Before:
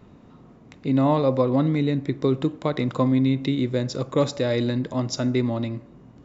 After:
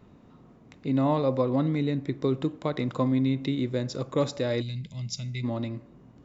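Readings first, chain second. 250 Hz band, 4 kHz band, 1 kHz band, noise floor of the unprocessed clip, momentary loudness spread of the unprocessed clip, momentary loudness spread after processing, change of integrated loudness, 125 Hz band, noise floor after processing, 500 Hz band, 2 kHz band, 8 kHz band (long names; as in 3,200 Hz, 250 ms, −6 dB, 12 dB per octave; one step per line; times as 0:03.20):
−5.0 dB, −4.5 dB, −4.5 dB, −50 dBFS, 6 LU, 10 LU, −5.0 dB, −4.5 dB, −55 dBFS, −5.0 dB, −5.0 dB, can't be measured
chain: gain on a spectral selection 0:04.62–0:05.44, 220–2,000 Hz −20 dB
level −4.5 dB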